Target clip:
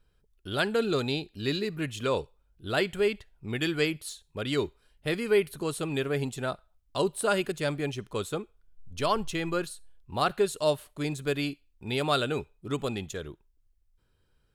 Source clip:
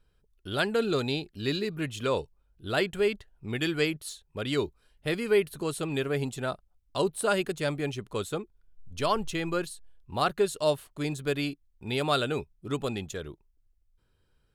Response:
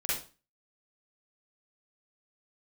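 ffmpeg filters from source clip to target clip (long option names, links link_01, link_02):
-filter_complex "[0:a]asplit=2[link_01][link_02];[link_02]highpass=830[link_03];[1:a]atrim=start_sample=2205[link_04];[link_03][link_04]afir=irnorm=-1:irlink=0,volume=-29.5dB[link_05];[link_01][link_05]amix=inputs=2:normalize=0"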